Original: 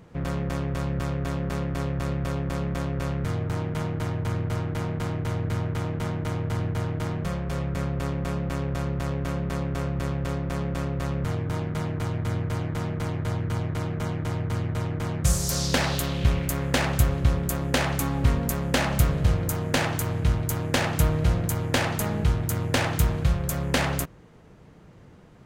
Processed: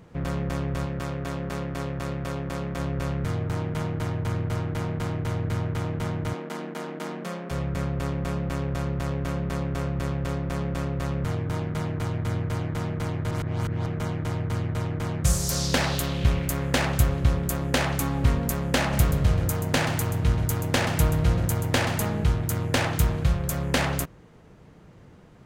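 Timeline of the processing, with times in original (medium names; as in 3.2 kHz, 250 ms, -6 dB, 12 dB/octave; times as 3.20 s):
0.85–2.79 s: bass shelf 140 Hz -7 dB
6.33–7.51 s: brick-wall FIR high-pass 170 Hz
13.31–13.86 s: reverse
18.80–22.11 s: delay 130 ms -10.5 dB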